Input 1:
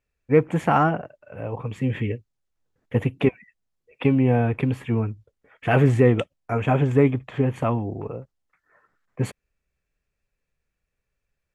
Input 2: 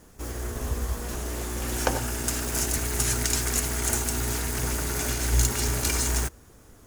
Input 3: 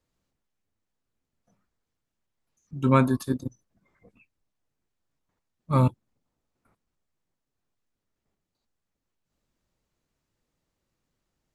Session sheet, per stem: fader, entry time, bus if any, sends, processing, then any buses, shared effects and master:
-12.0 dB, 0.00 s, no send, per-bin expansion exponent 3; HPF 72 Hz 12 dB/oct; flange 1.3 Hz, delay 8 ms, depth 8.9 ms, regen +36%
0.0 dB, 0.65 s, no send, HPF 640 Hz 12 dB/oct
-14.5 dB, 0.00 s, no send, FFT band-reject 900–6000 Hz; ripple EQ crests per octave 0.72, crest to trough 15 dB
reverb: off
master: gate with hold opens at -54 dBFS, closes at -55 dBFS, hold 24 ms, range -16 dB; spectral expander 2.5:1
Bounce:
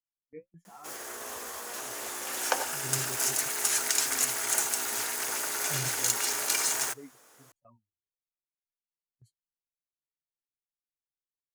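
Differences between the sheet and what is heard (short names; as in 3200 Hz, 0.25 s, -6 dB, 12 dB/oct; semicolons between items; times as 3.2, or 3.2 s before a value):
stem 1 -12.0 dB -> -22.5 dB; stem 3 -14.5 dB -> -22.0 dB; master: missing spectral expander 2.5:1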